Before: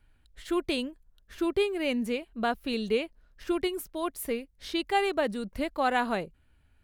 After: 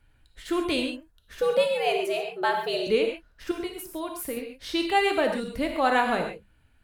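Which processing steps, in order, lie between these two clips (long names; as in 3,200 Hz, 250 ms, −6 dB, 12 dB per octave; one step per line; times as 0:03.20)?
mains-hum notches 50/100/150/200 Hz
0:01.41–0:02.87: frequency shifter +150 Hz
0:03.51–0:04.37: downward compressor 6 to 1, threshold −33 dBFS, peak gain reduction 9 dB
reverb whose tail is shaped and stops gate 160 ms flat, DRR 2.5 dB
level +2.5 dB
Opus 128 kbit/s 48,000 Hz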